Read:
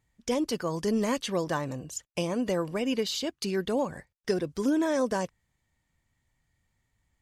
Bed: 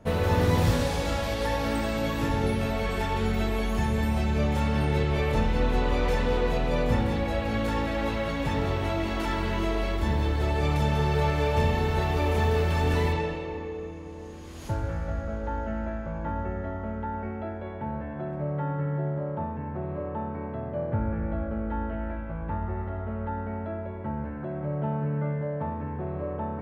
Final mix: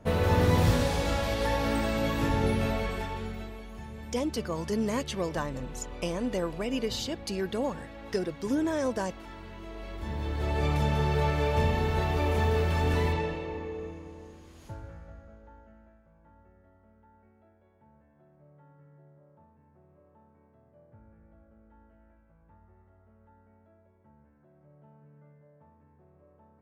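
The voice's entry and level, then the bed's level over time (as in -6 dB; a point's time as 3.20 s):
3.85 s, -2.5 dB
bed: 2.70 s -0.5 dB
3.64 s -16.5 dB
9.62 s -16.5 dB
10.59 s -2 dB
13.88 s -2 dB
16.04 s -28 dB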